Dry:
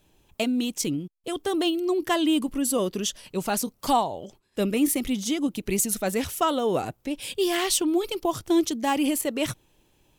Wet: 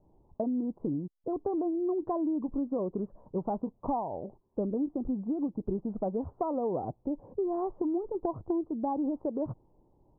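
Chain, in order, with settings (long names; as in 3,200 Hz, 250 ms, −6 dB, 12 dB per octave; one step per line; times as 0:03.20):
Butterworth low-pass 1,000 Hz 48 dB per octave
downward compressor 6 to 1, threshold −28 dBFS, peak gain reduction 10.5 dB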